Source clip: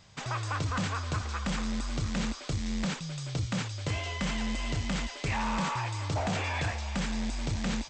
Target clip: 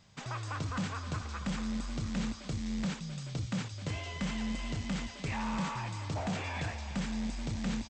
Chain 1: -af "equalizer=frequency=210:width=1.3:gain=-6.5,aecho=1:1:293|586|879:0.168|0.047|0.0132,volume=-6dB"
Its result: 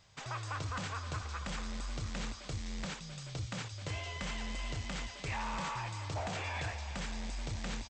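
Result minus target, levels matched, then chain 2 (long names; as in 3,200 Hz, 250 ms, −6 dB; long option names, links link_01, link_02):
250 Hz band −7.0 dB
-af "equalizer=frequency=210:width=1.3:gain=5,aecho=1:1:293|586|879:0.168|0.047|0.0132,volume=-6dB"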